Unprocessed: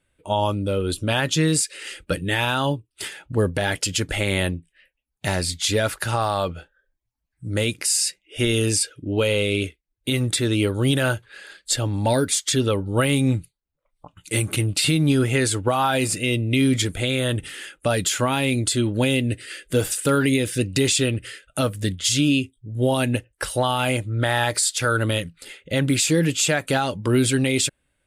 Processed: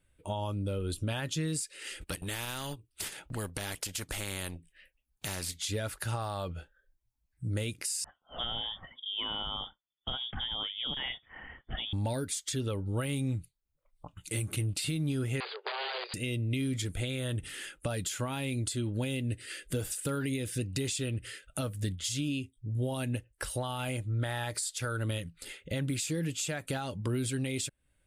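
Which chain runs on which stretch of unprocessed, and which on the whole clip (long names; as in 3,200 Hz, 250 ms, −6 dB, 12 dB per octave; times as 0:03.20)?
0:02.01–0:05.60: transient designer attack −4 dB, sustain −11 dB + every bin compressed towards the loudest bin 2 to 1
0:08.04–0:11.93: high-pass filter 200 Hz 6 dB per octave + voice inversion scrambler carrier 3,500 Hz
0:15.40–0:16.14: wrap-around overflow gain 16 dB + linear-phase brick-wall band-pass 370–4,900 Hz
whole clip: high-shelf EQ 6,600 Hz +5 dB; downward compressor 2.5 to 1, threshold −32 dBFS; low-shelf EQ 140 Hz +9.5 dB; level −5.5 dB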